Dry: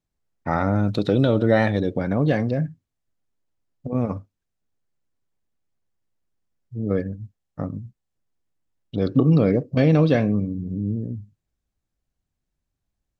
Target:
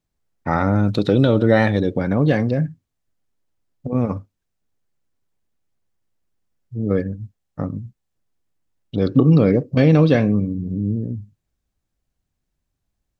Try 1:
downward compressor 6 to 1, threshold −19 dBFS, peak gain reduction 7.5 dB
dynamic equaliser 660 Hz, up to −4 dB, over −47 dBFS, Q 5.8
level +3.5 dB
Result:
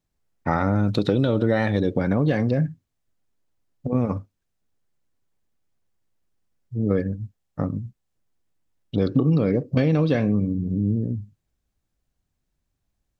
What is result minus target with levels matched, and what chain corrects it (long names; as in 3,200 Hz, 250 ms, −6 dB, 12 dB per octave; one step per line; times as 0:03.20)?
downward compressor: peak gain reduction +7.5 dB
dynamic equaliser 660 Hz, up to −4 dB, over −47 dBFS, Q 5.8
level +3.5 dB